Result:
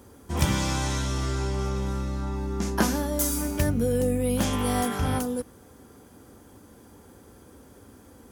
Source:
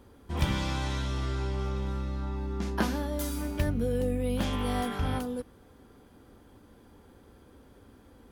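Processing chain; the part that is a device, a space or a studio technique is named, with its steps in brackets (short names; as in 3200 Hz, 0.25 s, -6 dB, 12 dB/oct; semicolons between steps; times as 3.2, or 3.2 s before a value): budget condenser microphone (HPF 62 Hz; resonant high shelf 5000 Hz +7 dB, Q 1.5); gain +5 dB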